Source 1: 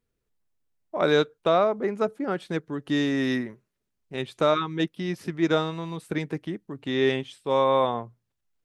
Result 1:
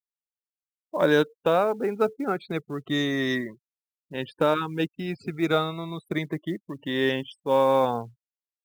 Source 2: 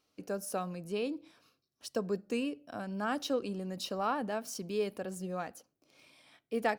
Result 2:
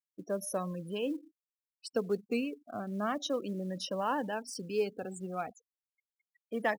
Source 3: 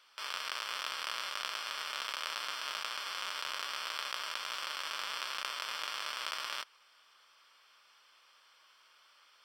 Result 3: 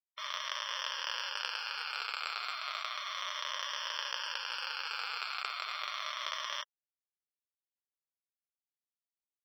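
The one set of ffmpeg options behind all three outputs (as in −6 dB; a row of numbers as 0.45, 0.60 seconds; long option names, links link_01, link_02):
-af "afftfilt=real='re*pow(10,8/40*sin(2*PI*(1.2*log(max(b,1)*sr/1024/100)/log(2)-(-0.33)*(pts-256)/sr)))':imag='im*pow(10,8/40*sin(2*PI*(1.2*log(max(b,1)*sr/1024/100)/log(2)-(-0.33)*(pts-256)/sr)))':win_size=1024:overlap=0.75,afftfilt=real='re*gte(hypot(re,im),0.00794)':imag='im*gte(hypot(re,im),0.00794)':win_size=1024:overlap=0.75,acrusher=bits=8:mode=log:mix=0:aa=0.000001"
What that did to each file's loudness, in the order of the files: 0.0, +0.5, +0.5 LU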